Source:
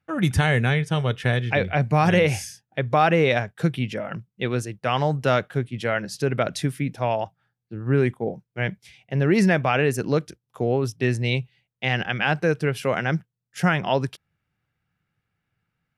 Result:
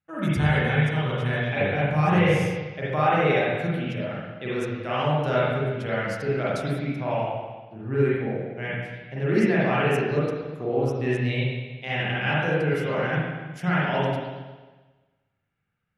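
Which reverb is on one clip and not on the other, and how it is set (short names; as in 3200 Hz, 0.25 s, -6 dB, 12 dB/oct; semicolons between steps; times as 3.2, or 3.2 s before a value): spring tank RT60 1.3 s, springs 40/45/59 ms, chirp 80 ms, DRR -8.5 dB; gain -10.5 dB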